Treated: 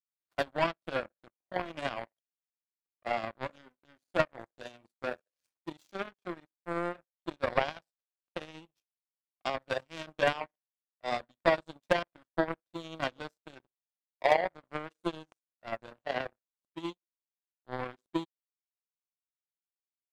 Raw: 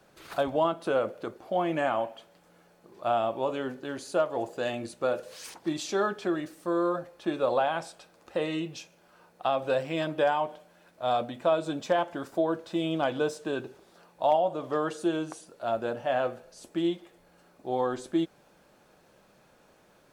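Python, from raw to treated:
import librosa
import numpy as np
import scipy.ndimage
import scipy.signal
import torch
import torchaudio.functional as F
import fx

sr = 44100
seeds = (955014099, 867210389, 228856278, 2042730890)

y = fx.notch_comb(x, sr, f0_hz=430.0)
y = fx.power_curve(y, sr, exponent=3.0)
y = y * 10.0 ** (7.5 / 20.0)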